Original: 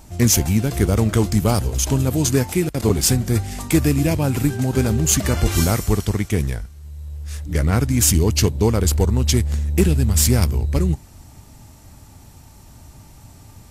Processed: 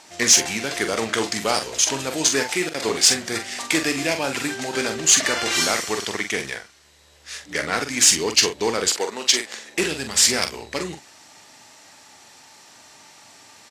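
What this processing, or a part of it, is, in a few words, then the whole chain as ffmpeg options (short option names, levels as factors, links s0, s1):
intercom: -filter_complex "[0:a]highpass=440,lowpass=5000,equalizer=f=1800:t=o:w=0.44:g=4.5,asoftclip=type=tanh:threshold=0.299,asplit=2[s0][s1];[s1]adelay=44,volume=0.422[s2];[s0][s2]amix=inputs=2:normalize=0,asettb=1/sr,asplit=3[s3][s4][s5];[s3]atrim=end=8.884[s6];[s4]atrim=start=8.88:end=9.78,asetpts=PTS-STARTPTS,afade=t=in:d=0.004:c=qsin,afade=t=out:st=0.896:d=0.004:c=qsin,highpass=300[s7];[s5]atrim=start=9.776[s8];[s6][s7]acrossfade=d=0.004:c1=hsin:c2=qsin[s9];[s9][s8]acrossfade=d=0.004:c1=qsin:c2=hsin,highshelf=f=2200:g=11.5"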